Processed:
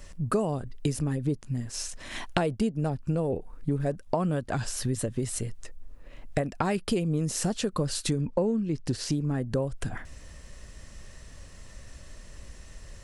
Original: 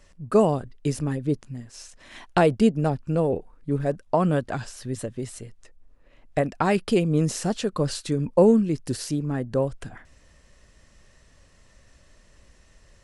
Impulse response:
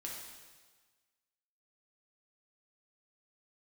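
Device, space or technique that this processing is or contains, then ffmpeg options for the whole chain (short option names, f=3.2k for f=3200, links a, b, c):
ASMR close-microphone chain: -filter_complex "[0:a]lowshelf=f=160:g=5.5,acompressor=threshold=-31dB:ratio=5,highshelf=f=7.8k:g=7.5,asettb=1/sr,asplit=3[a][b][c];[a]atrim=end=8.214[d];[b]atrim=start=8.21:end=9.12,asetpts=PTS-STARTPTS,afade=t=in:d=0.004:c=qsin,afade=t=out:st=0.906:d=0.004:c=qsin,lowpass=5.7k[e];[c]atrim=start=9.116[f];[d][e]acrossfade=d=0.004:c1=hsin:c2=qsin[g];[g][f]acrossfade=d=0.004:c1=qsin:c2=hsin,volume=5.5dB"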